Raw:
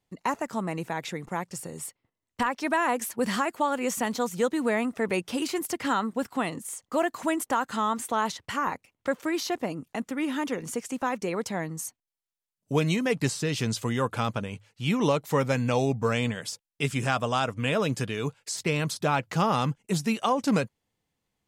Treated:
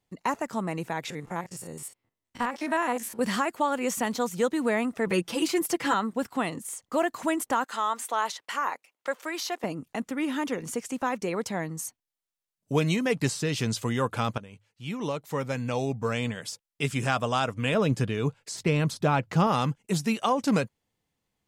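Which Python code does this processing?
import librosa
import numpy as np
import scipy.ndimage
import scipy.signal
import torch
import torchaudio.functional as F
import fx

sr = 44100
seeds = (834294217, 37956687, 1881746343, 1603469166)

y = fx.spec_steps(x, sr, hold_ms=50, at=(1.1, 3.21))
y = fx.comb(y, sr, ms=6.0, depth=0.81, at=(5.06, 5.94))
y = fx.highpass(y, sr, hz=530.0, slope=12, at=(7.64, 9.64))
y = fx.tilt_eq(y, sr, slope=-1.5, at=(17.74, 19.47))
y = fx.edit(y, sr, fx.fade_in_from(start_s=14.38, length_s=2.71, floor_db=-12.5), tone=tone)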